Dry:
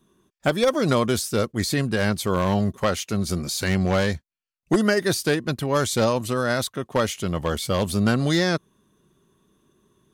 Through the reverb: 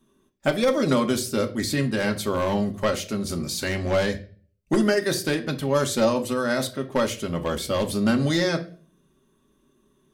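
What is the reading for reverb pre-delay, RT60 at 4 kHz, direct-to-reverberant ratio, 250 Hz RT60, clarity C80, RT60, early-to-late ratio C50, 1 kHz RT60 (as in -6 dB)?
3 ms, 0.35 s, 3.5 dB, 0.55 s, 19.5 dB, 0.40 s, 14.0 dB, 0.35 s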